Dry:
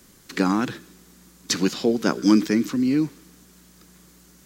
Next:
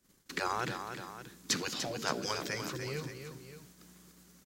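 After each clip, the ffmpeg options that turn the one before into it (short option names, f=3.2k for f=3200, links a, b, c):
-af "afftfilt=real='re*lt(hypot(re,im),0.316)':imag='im*lt(hypot(re,im),0.316)':win_size=1024:overlap=0.75,aecho=1:1:295|574:0.398|0.224,agate=range=-17dB:threshold=-51dB:ratio=16:detection=peak,volume=-6dB"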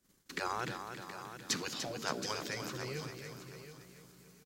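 -af "aecho=1:1:723|1446|2169:0.282|0.0535|0.0102,volume=-3dB"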